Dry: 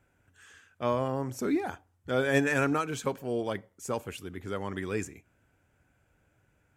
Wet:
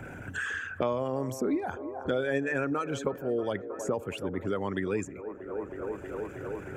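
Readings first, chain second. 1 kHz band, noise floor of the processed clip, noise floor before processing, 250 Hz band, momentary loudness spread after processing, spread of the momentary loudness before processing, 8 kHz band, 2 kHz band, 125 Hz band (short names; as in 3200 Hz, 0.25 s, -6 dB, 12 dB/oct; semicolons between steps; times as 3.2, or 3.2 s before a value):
-1.5 dB, -44 dBFS, -71 dBFS, 0.0 dB, 8 LU, 13 LU, -3.0 dB, -0.5 dB, -1.5 dB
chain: formant sharpening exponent 1.5; band-limited delay 0.317 s, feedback 65%, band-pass 640 Hz, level -15.5 dB; three-band squash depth 100%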